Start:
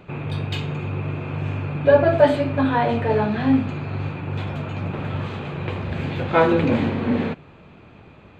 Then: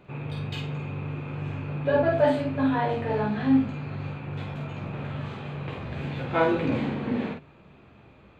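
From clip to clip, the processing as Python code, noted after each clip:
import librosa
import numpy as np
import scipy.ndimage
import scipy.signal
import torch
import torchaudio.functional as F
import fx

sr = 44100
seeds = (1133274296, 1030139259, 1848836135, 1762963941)

y = fx.room_early_taps(x, sr, ms=(15, 49), db=(-5.5, -4.0))
y = y * librosa.db_to_amplitude(-8.5)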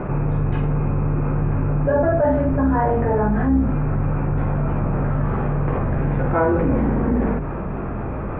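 y = fx.octave_divider(x, sr, octaves=2, level_db=-2.0)
y = scipy.signal.sosfilt(scipy.signal.butter(4, 1600.0, 'lowpass', fs=sr, output='sos'), y)
y = fx.env_flatten(y, sr, amount_pct=70)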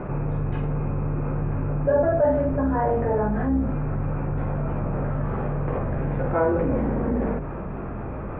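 y = fx.dynamic_eq(x, sr, hz=550.0, q=2.1, threshold_db=-33.0, ratio=4.0, max_db=5)
y = y * librosa.db_to_amplitude(-5.5)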